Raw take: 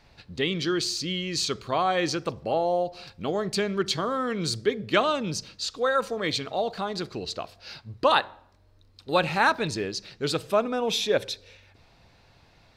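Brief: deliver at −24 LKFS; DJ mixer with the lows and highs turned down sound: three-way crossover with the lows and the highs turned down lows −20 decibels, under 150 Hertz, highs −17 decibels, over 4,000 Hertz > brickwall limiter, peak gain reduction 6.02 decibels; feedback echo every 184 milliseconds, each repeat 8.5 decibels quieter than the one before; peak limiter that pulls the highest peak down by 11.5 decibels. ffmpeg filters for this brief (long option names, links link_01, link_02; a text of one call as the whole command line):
ffmpeg -i in.wav -filter_complex "[0:a]alimiter=limit=-18.5dB:level=0:latency=1,acrossover=split=150 4000:gain=0.1 1 0.141[link_01][link_02][link_03];[link_01][link_02][link_03]amix=inputs=3:normalize=0,aecho=1:1:184|368|552|736:0.376|0.143|0.0543|0.0206,volume=8dB,alimiter=limit=-13dB:level=0:latency=1" out.wav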